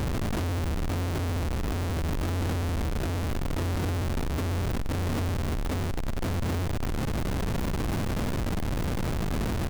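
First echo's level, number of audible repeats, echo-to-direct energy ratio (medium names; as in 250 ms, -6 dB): -17.0 dB, 1, -17.0 dB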